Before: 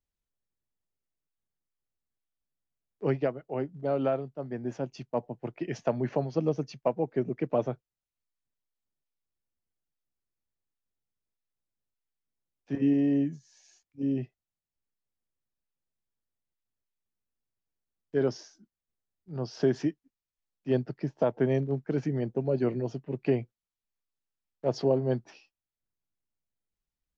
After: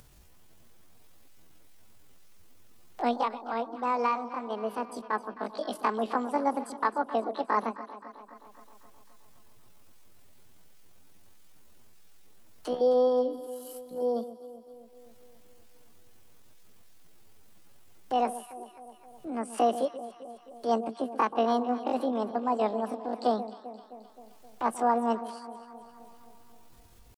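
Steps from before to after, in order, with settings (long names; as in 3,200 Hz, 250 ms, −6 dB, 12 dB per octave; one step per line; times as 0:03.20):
upward compression, threshold −30 dBFS
pitch shifter +10 semitones
delay that swaps between a low-pass and a high-pass 131 ms, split 990 Hz, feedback 77%, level −12.5 dB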